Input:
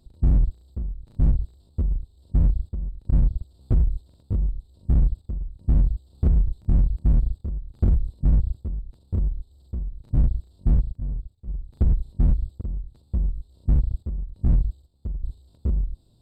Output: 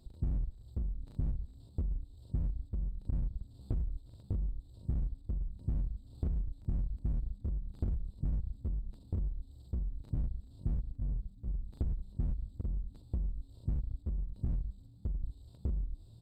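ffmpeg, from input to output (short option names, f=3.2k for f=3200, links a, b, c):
-filter_complex "[0:a]acompressor=threshold=-31dB:ratio=6,asplit=5[a][b][c][d][e];[b]adelay=175,afreqshift=-80,volume=-22dB[f];[c]adelay=350,afreqshift=-160,volume=-26.6dB[g];[d]adelay=525,afreqshift=-240,volume=-31.2dB[h];[e]adelay=700,afreqshift=-320,volume=-35.7dB[i];[a][f][g][h][i]amix=inputs=5:normalize=0,volume=-1.5dB"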